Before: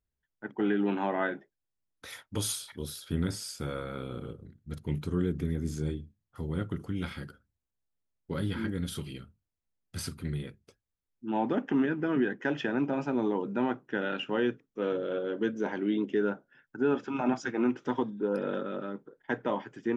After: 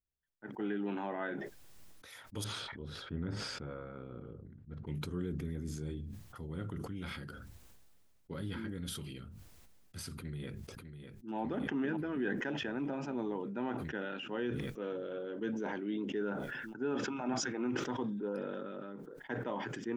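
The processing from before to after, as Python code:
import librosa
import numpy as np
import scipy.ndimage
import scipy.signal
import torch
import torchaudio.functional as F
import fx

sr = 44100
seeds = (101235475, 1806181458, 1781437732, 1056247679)

y = fx.lowpass(x, sr, hz=1700.0, slope=12, at=(2.44, 4.87))
y = fx.echo_throw(y, sr, start_s=10.16, length_s=1.2, ms=600, feedback_pct=70, wet_db=-8.0)
y = fx.sustainer(y, sr, db_per_s=23.0)
y = y * 10.0 ** (-9.0 / 20.0)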